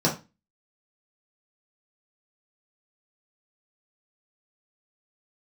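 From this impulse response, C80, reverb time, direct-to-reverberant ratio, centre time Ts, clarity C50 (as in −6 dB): 17.0 dB, 0.25 s, −5.0 dB, 20 ms, 10.0 dB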